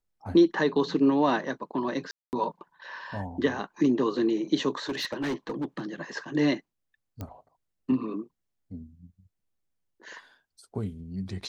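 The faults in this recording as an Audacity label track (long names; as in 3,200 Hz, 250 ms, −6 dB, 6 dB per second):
2.110000	2.330000	drop-out 219 ms
4.890000	5.810000	clipping −26 dBFS
7.210000	7.210000	click −23 dBFS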